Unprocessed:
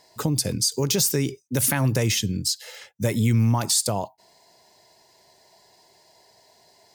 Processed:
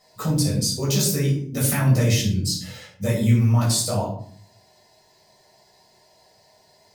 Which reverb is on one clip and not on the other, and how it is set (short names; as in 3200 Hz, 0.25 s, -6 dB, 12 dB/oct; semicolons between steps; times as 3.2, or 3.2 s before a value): shoebox room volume 570 m³, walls furnished, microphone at 6.4 m; gain -8.5 dB